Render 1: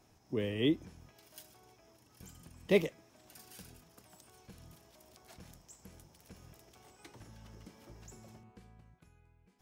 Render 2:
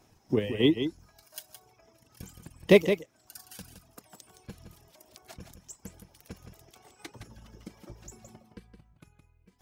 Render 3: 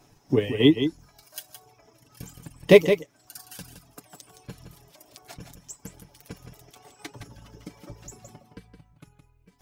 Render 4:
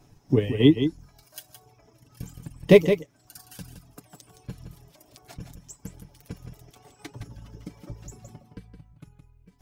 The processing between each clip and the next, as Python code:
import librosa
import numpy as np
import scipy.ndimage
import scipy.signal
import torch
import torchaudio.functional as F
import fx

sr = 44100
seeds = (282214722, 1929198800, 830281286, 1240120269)

y1 = fx.dereverb_blind(x, sr, rt60_s=1.4)
y1 = fx.transient(y1, sr, attack_db=8, sustain_db=2)
y1 = y1 + 10.0 ** (-8.5 / 20.0) * np.pad(y1, (int(167 * sr / 1000.0), 0))[:len(y1)]
y1 = y1 * librosa.db_to_amplitude(3.5)
y2 = y1 + 0.49 * np.pad(y1, (int(7.0 * sr / 1000.0), 0))[:len(y1)]
y2 = y2 * librosa.db_to_amplitude(3.5)
y3 = fx.low_shelf(y2, sr, hz=250.0, db=10.0)
y3 = y3 * librosa.db_to_amplitude(-3.5)